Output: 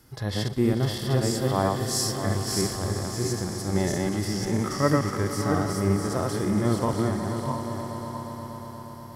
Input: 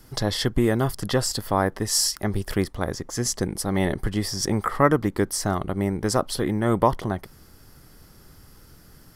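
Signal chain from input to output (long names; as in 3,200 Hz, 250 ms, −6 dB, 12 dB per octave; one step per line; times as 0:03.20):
feedback delay that plays each chunk backwards 327 ms, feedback 42%, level −1.5 dB
high-pass filter 45 Hz
echo that builds up and dies away 119 ms, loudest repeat 5, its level −18 dB
harmonic and percussive parts rebalanced percussive −14 dB
level −1 dB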